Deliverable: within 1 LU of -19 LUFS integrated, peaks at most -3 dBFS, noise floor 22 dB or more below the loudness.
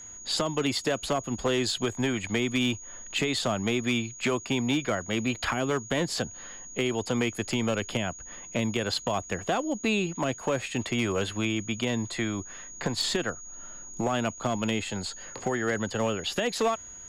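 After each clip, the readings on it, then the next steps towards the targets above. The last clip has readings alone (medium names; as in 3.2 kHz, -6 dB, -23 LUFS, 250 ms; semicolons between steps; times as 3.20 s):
clipped samples 0.9%; clipping level -19.5 dBFS; steady tone 6.7 kHz; tone level -42 dBFS; loudness -29.0 LUFS; peak level -19.5 dBFS; loudness target -19.0 LUFS
-> clip repair -19.5 dBFS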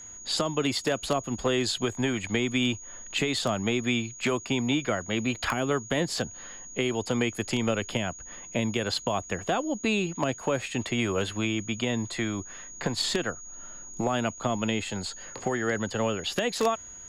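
clipped samples 0.0%; steady tone 6.7 kHz; tone level -42 dBFS
-> band-stop 6.7 kHz, Q 30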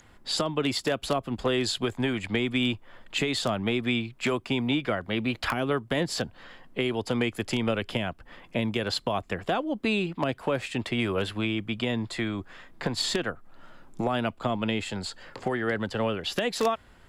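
steady tone not found; loudness -29.0 LUFS; peak level -10.5 dBFS; loudness target -19.0 LUFS
-> trim +10 dB; peak limiter -3 dBFS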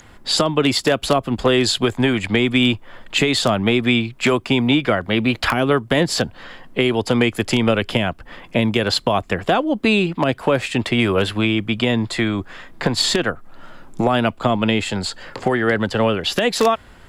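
loudness -19.0 LUFS; peak level -3.0 dBFS; noise floor -45 dBFS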